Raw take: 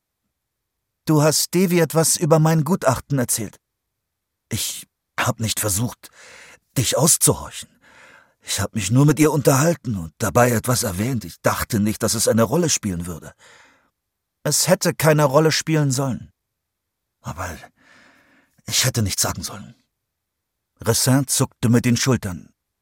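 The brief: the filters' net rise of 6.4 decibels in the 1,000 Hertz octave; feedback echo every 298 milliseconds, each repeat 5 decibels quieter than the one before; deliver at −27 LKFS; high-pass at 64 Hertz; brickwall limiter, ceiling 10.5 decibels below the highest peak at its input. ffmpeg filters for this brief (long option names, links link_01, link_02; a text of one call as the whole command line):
ffmpeg -i in.wav -af "highpass=64,equalizer=frequency=1000:width_type=o:gain=8,alimiter=limit=-8.5dB:level=0:latency=1,aecho=1:1:298|596|894|1192|1490|1788|2086:0.562|0.315|0.176|0.0988|0.0553|0.031|0.0173,volume=-7.5dB" out.wav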